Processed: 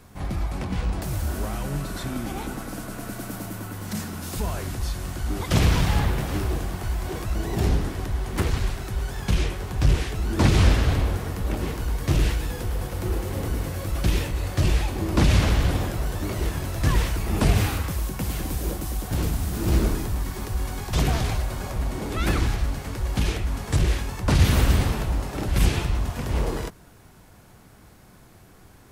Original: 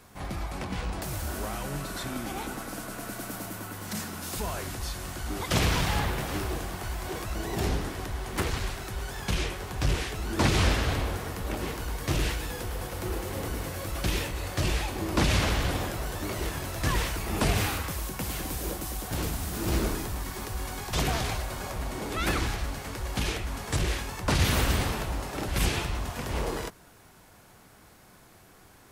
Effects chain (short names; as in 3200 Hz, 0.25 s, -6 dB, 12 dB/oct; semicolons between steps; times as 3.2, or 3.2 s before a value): low shelf 300 Hz +8.5 dB